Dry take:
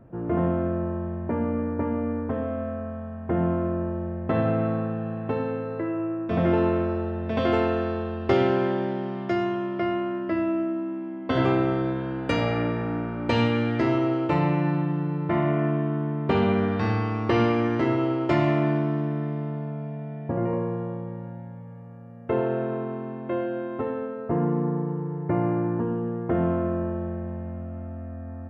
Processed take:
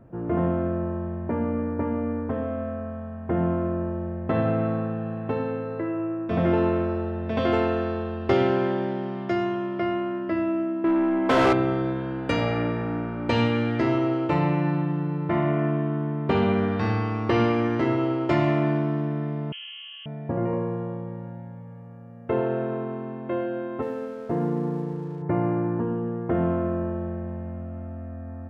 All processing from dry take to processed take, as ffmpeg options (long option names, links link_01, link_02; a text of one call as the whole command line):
ffmpeg -i in.wav -filter_complex "[0:a]asettb=1/sr,asplit=3[link_01][link_02][link_03];[link_01]atrim=end=10.844[link_04];[link_02]atrim=start=10.84:end=11.53,asetpts=PTS-STARTPTS,afade=type=in:duration=0.004:curve=qsin,afade=type=out:start_time=0.686:duration=0.004:curve=qsin,highpass=frequency=170:poles=1,asplit=2[link_05][link_06];[link_06]highpass=frequency=720:poles=1,volume=28dB,asoftclip=type=tanh:threshold=-11dB[link_07];[link_05][link_07]amix=inputs=2:normalize=0,lowpass=frequency=1400:poles=1,volume=-6dB[link_08];[link_03]atrim=start=11.526[link_09];[link_04][link_08]acrossfade=duration=0.004:curve1=hsin:curve2=qsin[link_10];[link_10][link_09]acrossfade=duration=0.004:curve1=qsin:curve2=hsin,asettb=1/sr,asplit=3[link_11][link_12][link_13];[link_11]atrim=end=19.524[link_14];[link_12]atrim=start=19.52:end=20.06,asetpts=PTS-STARTPTS,afade=type=in:duration=0.004:curve=qsin,afade=type=out:start_time=0.536:duration=0.004:curve=qsin,highpass=frequency=330:width=0.5412,highpass=frequency=330:width=1.3066,lowpass=frequency=3000:width_type=q:width=0.5098,lowpass=frequency=3000:width_type=q:width=0.6013,lowpass=frequency=3000:width_type=q:width=0.9,lowpass=frequency=3000:width_type=q:width=2.563,afreqshift=-3500[link_15];[link_13]atrim=start=20.056[link_16];[link_14][link_15]acrossfade=duration=0.004:curve1=hsin:curve2=qsin[link_17];[link_17][link_16]acrossfade=duration=0.004:curve1=qsin:curve2=hsin,asettb=1/sr,asplit=3[link_18][link_19][link_20];[link_18]atrim=end=23.824[link_21];[link_19]atrim=start=23.82:end=25.22,asetpts=PTS-STARTPTS,afade=type=in:duration=0.004:curve=qsin,afade=type=out:start_time=1.396:duration=0.004:curve=qsin,highpass=frequency=120:poles=1,equalizer=frequency=1100:width_type=o:width=0.56:gain=-4.5,aeval=exprs='sgn(val(0))*max(abs(val(0))-0.00224,0)':channel_layout=same[link_22];[link_20]atrim=start=25.216[link_23];[link_21][link_22]acrossfade=duration=0.004:curve1=hsin:curve2=qsin[link_24];[link_24][link_23]acrossfade=duration=0.004:curve1=qsin:curve2=hsin" out.wav